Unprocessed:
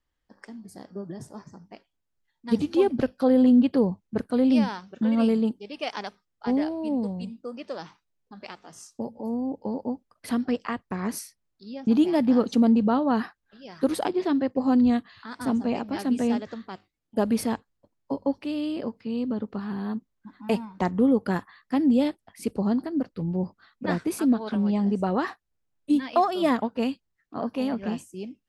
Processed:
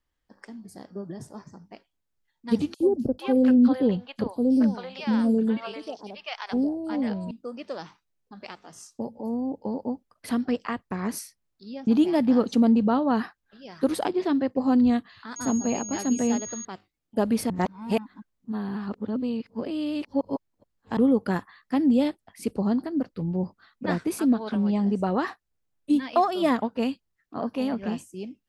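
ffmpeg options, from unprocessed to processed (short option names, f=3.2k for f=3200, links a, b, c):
-filter_complex "[0:a]asettb=1/sr,asplit=3[a][b][c];[a]atrim=end=2.744[d];[b]atrim=start=2.74:end=7.31,asetpts=PTS-STARTPTS,afade=t=in:d=0.004:c=qsin,afade=t=out:st=4.566:d=0.004:c=qsin,acrossover=split=680|5800[e][f][g];[e]adelay=60[h];[f]adelay=450[i];[h][i][g]amix=inputs=3:normalize=0,atrim=end_sample=201537[j];[c]atrim=start=7.306[k];[d][j]acrossfade=d=0.004:c1=hsin:c2=qsin[l];[l][k]acrossfade=d=0.004:c1=qsin:c2=hsin,asettb=1/sr,asplit=3[m][n][o];[m]atrim=end=15.364[p];[n]atrim=start=15.36:end=16.65,asetpts=PTS-STARTPTS,afade=t=in:d=0.004:c=qsin,afade=t=out:st=1.286:d=0.004:c=qsin,aeval=exprs='val(0)+0.0178*sin(2*PI*6600*n/s)':c=same[q];[o]atrim=start=16.646[r];[p][q]acrossfade=d=0.004:c1=hsin:c2=qsin[s];[s][r]acrossfade=d=0.004:c1=qsin:c2=hsin,asplit=3[t][u][v];[t]atrim=end=17.502[w];[u]atrim=start=17.498:end=20.972,asetpts=PTS-STARTPTS,areverse[x];[v]atrim=start=20.968[y];[w][x]acrossfade=d=0.004:c1=hsin:c2=hsin[z];[z][y]acrossfade=d=0.004:c1=hsin:c2=hsin"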